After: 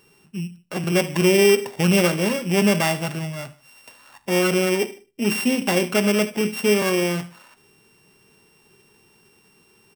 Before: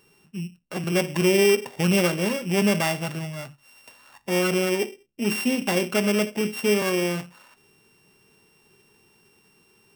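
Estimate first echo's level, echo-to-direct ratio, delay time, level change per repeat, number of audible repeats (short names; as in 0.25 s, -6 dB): -19.0 dB, -18.0 dB, 75 ms, -6.0 dB, 2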